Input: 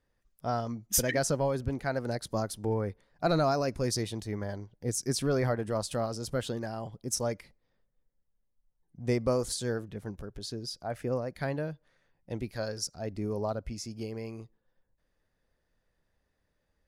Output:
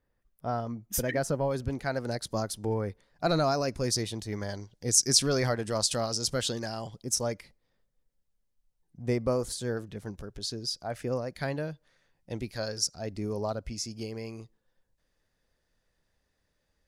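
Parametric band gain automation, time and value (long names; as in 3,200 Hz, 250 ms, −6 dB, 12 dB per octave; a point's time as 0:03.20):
parametric band 5,700 Hz 2.1 octaves
−7 dB
from 0:01.51 +4.5 dB
from 0:04.32 +13.5 dB
from 0:07.03 +4 dB
from 0:09.02 −2.5 dB
from 0:09.77 +6.5 dB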